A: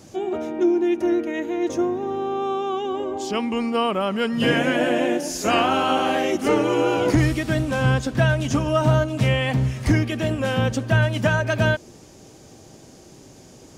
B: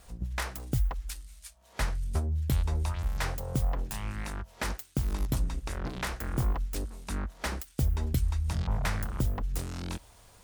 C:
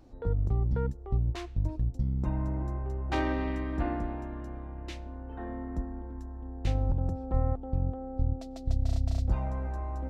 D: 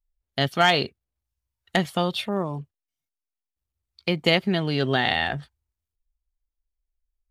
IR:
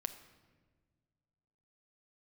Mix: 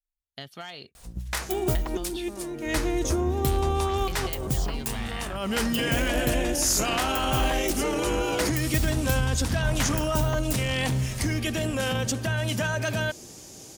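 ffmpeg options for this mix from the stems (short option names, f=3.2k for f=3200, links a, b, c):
-filter_complex "[0:a]highshelf=f=6.5k:g=7,alimiter=limit=-17.5dB:level=0:latency=1:release=10,adelay=1350,volume=-2.5dB[a];[1:a]adelay=950,volume=-3dB,asplit=2[b][c];[c]volume=-4dB[d];[2:a]adelay=2400,volume=-13dB[e];[3:a]acompressor=threshold=-22dB:ratio=12,volume=-14.5dB,asplit=2[f][g];[g]apad=whole_len=667159[h];[a][h]sidechaincompress=threshold=-51dB:ratio=4:attack=9.4:release=130[i];[4:a]atrim=start_sample=2205[j];[d][j]afir=irnorm=-1:irlink=0[k];[i][b][e][f][k]amix=inputs=5:normalize=0,highshelf=f=3k:g=8"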